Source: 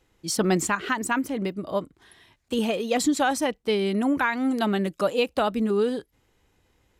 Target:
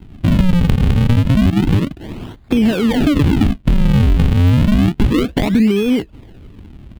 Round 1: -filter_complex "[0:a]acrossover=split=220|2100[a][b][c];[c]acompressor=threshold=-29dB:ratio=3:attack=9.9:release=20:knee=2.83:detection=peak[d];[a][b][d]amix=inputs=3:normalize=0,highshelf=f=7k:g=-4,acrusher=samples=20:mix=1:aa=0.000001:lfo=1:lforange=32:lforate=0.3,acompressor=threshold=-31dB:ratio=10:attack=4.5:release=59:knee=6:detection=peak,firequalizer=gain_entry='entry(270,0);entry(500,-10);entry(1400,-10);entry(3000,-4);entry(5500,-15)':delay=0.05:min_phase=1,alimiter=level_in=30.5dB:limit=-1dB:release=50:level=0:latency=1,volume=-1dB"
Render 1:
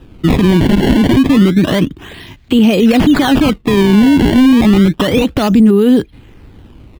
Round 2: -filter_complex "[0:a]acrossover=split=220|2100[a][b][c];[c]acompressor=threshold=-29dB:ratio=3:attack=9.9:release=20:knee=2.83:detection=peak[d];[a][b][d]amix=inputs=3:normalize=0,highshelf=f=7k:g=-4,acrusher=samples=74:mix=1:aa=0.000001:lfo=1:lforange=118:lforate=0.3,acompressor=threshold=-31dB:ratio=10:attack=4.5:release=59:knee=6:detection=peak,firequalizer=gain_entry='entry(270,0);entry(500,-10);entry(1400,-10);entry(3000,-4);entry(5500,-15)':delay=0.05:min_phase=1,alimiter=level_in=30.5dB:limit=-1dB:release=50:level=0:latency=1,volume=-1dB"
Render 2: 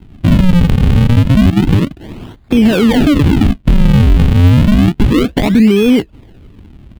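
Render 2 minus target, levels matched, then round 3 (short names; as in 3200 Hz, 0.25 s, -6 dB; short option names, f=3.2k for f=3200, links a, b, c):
compressor: peak gain reduction -7 dB
-filter_complex "[0:a]acrossover=split=220|2100[a][b][c];[c]acompressor=threshold=-29dB:ratio=3:attack=9.9:release=20:knee=2.83:detection=peak[d];[a][b][d]amix=inputs=3:normalize=0,highshelf=f=7k:g=-4,acrusher=samples=74:mix=1:aa=0.000001:lfo=1:lforange=118:lforate=0.3,acompressor=threshold=-39dB:ratio=10:attack=4.5:release=59:knee=6:detection=peak,firequalizer=gain_entry='entry(270,0);entry(500,-10);entry(1400,-10);entry(3000,-4);entry(5500,-15)':delay=0.05:min_phase=1,alimiter=level_in=30.5dB:limit=-1dB:release=50:level=0:latency=1,volume=-1dB"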